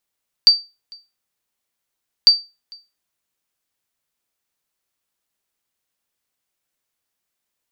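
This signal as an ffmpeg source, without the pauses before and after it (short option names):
-f lavfi -i "aevalsrc='0.794*(sin(2*PI*4640*mod(t,1.8))*exp(-6.91*mod(t,1.8)/0.26)+0.0355*sin(2*PI*4640*max(mod(t,1.8)-0.45,0))*exp(-6.91*max(mod(t,1.8)-0.45,0)/0.26))':d=3.6:s=44100"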